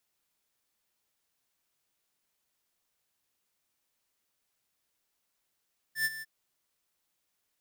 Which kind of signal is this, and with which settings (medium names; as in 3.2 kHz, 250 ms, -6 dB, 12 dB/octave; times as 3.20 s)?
ADSR square 1.77 kHz, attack 101 ms, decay 38 ms, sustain -14 dB, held 0.27 s, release 31 ms -27 dBFS